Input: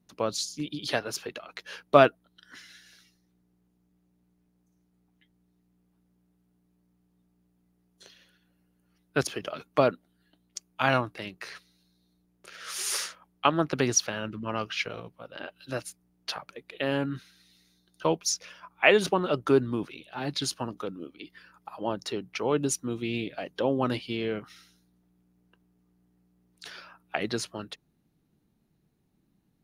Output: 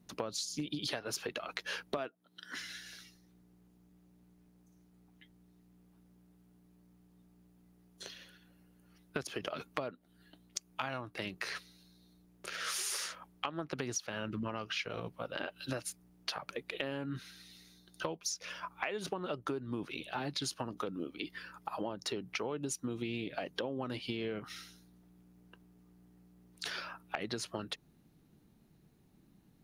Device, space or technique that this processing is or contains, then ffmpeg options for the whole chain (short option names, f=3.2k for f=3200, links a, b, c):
serial compression, peaks first: -filter_complex "[0:a]asettb=1/sr,asplit=3[a][b][c];[a]atrim=end=1.974[d];[b]atrim=start=1.97:end=2.57,asetpts=PTS-STARTPTS,afade=t=in:d=0.004:c=qsin,afade=t=out:st=0.596:d=0.004:c=qsin,highpass=170[e];[c]atrim=start=2.566[f];[d][e]acrossfade=d=0.004:c1=hsin:c2=qsin[g];[g][f]acrossfade=d=0.004:c1=qsin:c2=hsin,acompressor=threshold=-35dB:ratio=4,acompressor=threshold=-41dB:ratio=3,volume=5.5dB"